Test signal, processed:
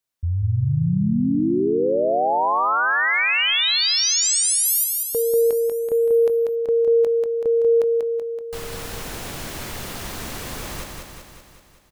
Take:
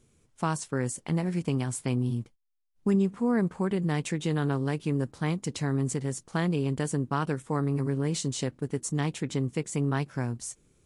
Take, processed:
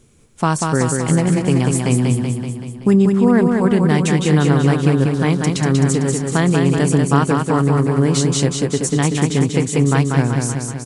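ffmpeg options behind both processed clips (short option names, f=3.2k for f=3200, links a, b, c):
-af "acontrast=67,aecho=1:1:190|380|570|760|950|1140|1330|1520|1710:0.631|0.379|0.227|0.136|0.0818|0.0491|0.0294|0.0177|0.0106,volume=5dB"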